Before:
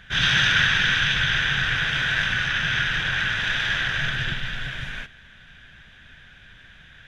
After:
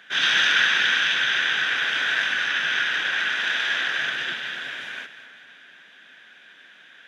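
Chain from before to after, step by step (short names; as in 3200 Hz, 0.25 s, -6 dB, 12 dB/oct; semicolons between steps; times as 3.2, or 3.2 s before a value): HPF 270 Hz 24 dB/oct; split-band echo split 2200 Hz, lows 0.255 s, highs 0.194 s, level -13 dB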